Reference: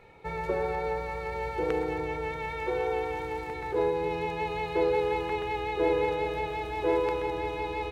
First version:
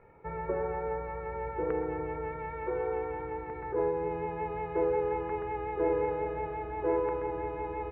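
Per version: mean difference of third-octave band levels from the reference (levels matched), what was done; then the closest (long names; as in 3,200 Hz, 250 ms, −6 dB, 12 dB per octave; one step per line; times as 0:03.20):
5.5 dB: low-pass filter 1,800 Hz 24 dB per octave
notch filter 770 Hz, Q 12
level −2.5 dB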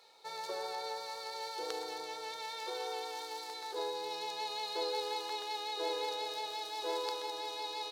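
11.0 dB: high-pass filter 690 Hz 12 dB per octave
high shelf with overshoot 3,200 Hz +11 dB, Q 3
level −4.5 dB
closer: first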